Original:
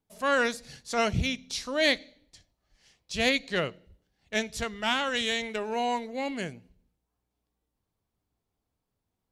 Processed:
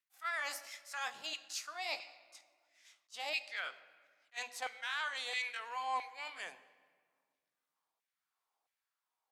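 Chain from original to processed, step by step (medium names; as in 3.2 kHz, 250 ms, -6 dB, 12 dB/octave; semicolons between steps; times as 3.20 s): pitch bend over the whole clip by +3.5 st ending unshifted; high-pass 110 Hz; hum notches 50/100/150/200/250 Hz; reverse; compression 6:1, threshold -36 dBFS, peak gain reduction 15 dB; reverse; LFO high-pass saw down 1.5 Hz 750–2100 Hz; on a send at -14.5 dB: reverberation RT60 1.8 s, pre-delay 12 ms; on the sum: attacks held to a fixed rise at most 480 dB/s; trim -2 dB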